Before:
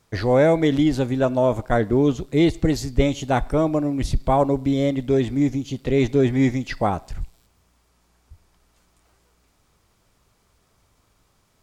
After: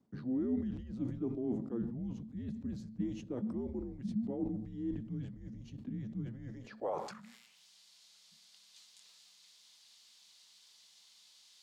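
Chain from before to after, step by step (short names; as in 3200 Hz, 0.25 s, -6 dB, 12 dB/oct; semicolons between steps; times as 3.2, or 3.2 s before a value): tone controls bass -3 dB, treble +10 dB; reverse; compressor 10:1, threshold -36 dBFS, peak gain reduction 22.5 dB; reverse; frequency shift -240 Hz; band-pass sweep 260 Hz -> 3800 Hz, 6.45–7.66; on a send at -17.5 dB: reverb, pre-delay 4 ms; on the sum: sustainer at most 69 dB/s; gain +7.5 dB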